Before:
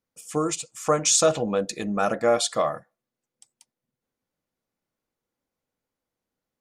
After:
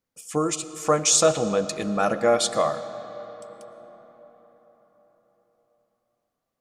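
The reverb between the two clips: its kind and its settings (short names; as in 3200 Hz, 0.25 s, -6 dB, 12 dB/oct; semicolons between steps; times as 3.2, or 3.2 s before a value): digital reverb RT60 4.9 s, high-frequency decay 0.55×, pre-delay 70 ms, DRR 12.5 dB; gain +1 dB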